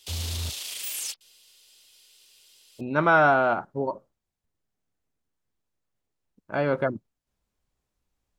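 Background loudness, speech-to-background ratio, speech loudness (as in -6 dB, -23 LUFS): -31.5 LUFS, 7.5 dB, -24.0 LUFS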